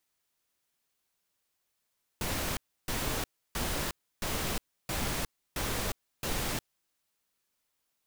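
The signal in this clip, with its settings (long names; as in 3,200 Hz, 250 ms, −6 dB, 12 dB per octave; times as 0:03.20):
noise bursts pink, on 0.36 s, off 0.31 s, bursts 7, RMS −32.5 dBFS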